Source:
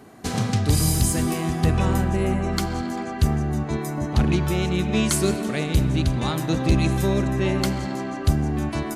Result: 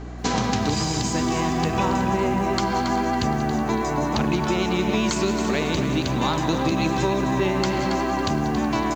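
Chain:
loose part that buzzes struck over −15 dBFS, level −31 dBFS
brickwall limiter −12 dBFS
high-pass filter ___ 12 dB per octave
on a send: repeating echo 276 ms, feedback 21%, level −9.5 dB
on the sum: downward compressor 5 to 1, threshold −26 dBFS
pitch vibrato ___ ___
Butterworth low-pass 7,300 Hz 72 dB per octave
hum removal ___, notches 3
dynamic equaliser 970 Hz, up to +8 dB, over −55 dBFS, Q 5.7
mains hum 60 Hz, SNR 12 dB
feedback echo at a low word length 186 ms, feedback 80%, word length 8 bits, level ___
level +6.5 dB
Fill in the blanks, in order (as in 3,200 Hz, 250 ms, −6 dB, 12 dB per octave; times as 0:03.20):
200 Hz, 10 Hz, 23 cents, 415.8 Hz, −14.5 dB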